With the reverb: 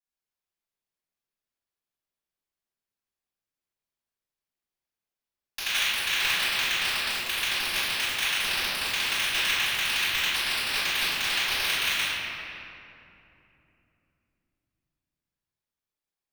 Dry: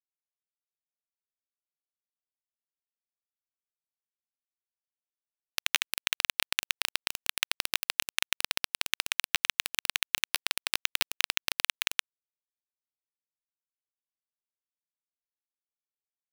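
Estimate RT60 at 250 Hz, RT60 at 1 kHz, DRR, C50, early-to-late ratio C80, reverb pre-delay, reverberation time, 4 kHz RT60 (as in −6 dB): 4.2 s, 2.6 s, −16.5 dB, −4.5 dB, −2.0 dB, 3 ms, 2.9 s, 1.7 s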